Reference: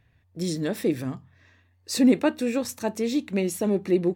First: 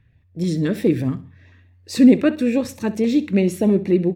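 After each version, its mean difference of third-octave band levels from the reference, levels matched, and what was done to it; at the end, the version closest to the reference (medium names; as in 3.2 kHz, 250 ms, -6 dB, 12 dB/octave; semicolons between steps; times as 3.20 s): 4.5 dB: tone controls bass +5 dB, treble -9 dB; level rider gain up to 4.5 dB; LFO notch saw up 4.6 Hz 610–1600 Hz; on a send: feedback delay 65 ms, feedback 36%, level -17 dB; on the sum: trim +1.5 dB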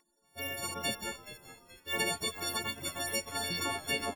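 16.5 dB: partials quantised in pitch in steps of 4 st; spectral gate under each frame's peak -20 dB weak; compression 3:1, threshold -37 dBFS, peak gain reduction 5.5 dB; on a send: frequency-shifting echo 426 ms, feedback 42%, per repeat -92 Hz, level -14.5 dB; on the sum: trim +8 dB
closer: first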